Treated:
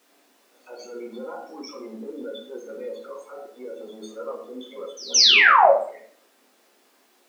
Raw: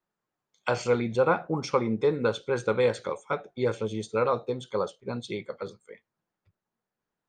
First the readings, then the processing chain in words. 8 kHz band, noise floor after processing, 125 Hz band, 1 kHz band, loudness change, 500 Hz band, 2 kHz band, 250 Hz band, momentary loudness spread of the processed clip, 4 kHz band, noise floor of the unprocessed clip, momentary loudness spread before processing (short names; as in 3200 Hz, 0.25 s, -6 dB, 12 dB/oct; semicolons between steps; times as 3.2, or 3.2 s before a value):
+18.0 dB, -61 dBFS, under -25 dB, +9.5 dB, +14.0 dB, -1.5 dB, +13.5 dB, -7.5 dB, 9 LU, +20.5 dB, under -85 dBFS, 11 LU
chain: notch 1600 Hz, Q 19; compressor, threshold -33 dBFS, peak gain reduction 14.5 dB; loudest bins only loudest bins 16; limiter -30.5 dBFS, peak gain reduction 6.5 dB; transient shaper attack -11 dB, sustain +2 dB; painted sound fall, 5.14–5.71, 520–6400 Hz -20 dBFS; added noise pink -65 dBFS; brick-wall FIR high-pass 210 Hz; pre-echo 0.172 s -23 dB; shoebox room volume 66 m³, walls mixed, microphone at 0.84 m; gain +2.5 dB